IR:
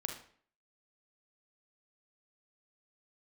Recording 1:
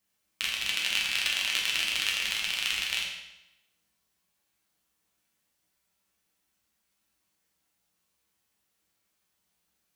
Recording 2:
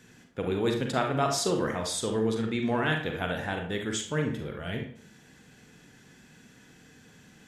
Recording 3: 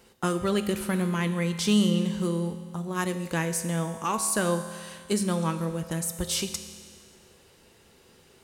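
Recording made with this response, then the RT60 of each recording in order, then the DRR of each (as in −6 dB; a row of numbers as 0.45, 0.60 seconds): 2; 0.90, 0.55, 1.9 seconds; −3.0, 3.0, 8.0 decibels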